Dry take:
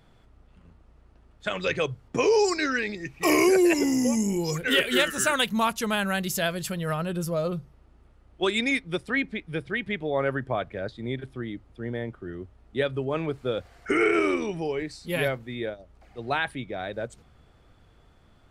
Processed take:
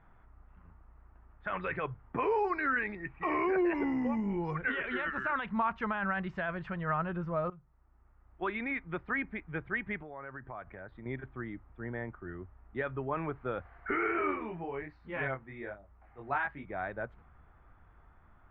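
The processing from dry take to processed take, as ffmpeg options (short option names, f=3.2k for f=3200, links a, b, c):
-filter_complex "[0:a]asettb=1/sr,asplit=3[a][b][c];[a]atrim=end=10.014[d];[b]atrim=start=10.01:end=11.06,asetpts=PTS-STARTPTS,afade=t=in:d=0.004:c=qsin,afade=t=out:st=1.046:d=0.004:c=qsin,acompressor=threshold=-36dB:ratio=6:attack=3.2:release=140:knee=1:detection=peak[e];[c]atrim=start=11.056[f];[d][e]acrossfade=d=0.004:c1=hsin:c2=qsin[g];[g][f]acrossfade=d=0.004:c1=qsin:c2=hsin,asplit=3[h][i][j];[h]afade=t=out:st=13.94:d=0.02[k];[i]flanger=delay=20:depth=3:speed=1.2,afade=t=in:st=13.94:d=0.02,afade=t=out:st=16.65:d=0.02[l];[j]afade=t=in:st=16.65:d=0.02[m];[k][l][m]amix=inputs=3:normalize=0,asplit=2[n][o];[n]atrim=end=7.5,asetpts=PTS-STARTPTS,afade=t=out:st=7.496:d=0.004:c=hsin:silence=0.125893[p];[o]atrim=start=7.5,asetpts=PTS-STARTPTS,afade=t=in:d=1.28:silence=0.125893[q];[p][q]concat=n=2:v=0:a=1,equalizer=f=125:t=o:w=1:g=-6,equalizer=f=250:t=o:w=1:g=-5,equalizer=f=500:t=o:w=1:g=-9,equalizer=f=1k:t=o:w=1:g=4,alimiter=limit=-20.5dB:level=0:latency=1:release=13,lowpass=f=1.9k:w=0.5412,lowpass=f=1.9k:w=1.3066"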